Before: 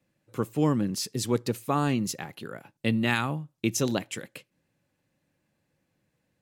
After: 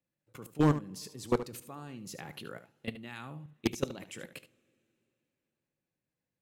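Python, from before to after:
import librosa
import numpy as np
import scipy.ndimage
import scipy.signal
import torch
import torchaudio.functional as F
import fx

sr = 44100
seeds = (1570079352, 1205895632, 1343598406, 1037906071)

p1 = fx.level_steps(x, sr, step_db=23)
p2 = fx.rev_double_slope(p1, sr, seeds[0], early_s=0.26, late_s=3.1, knee_db=-22, drr_db=16.5)
p3 = 10.0 ** (-17.5 / 20.0) * (np.abs((p2 / 10.0 ** (-17.5 / 20.0) + 3.0) % 4.0 - 2.0) - 1.0)
p4 = p3 + fx.echo_single(p3, sr, ms=74, db=-13.0, dry=0)
y = p4 * 10.0 ** (1.5 / 20.0)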